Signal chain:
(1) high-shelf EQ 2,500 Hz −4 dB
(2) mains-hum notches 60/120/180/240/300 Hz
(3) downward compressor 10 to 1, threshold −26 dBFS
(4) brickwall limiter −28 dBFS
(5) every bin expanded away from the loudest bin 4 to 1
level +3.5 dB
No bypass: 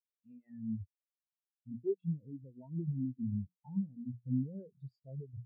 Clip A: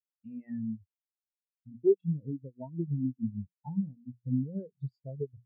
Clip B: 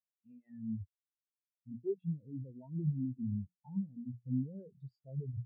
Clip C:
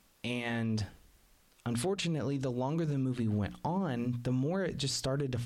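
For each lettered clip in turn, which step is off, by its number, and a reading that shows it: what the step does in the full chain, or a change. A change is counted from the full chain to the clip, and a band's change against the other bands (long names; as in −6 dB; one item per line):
4, average gain reduction 4.0 dB
3, average gain reduction 4.5 dB
5, change in crest factor −6.0 dB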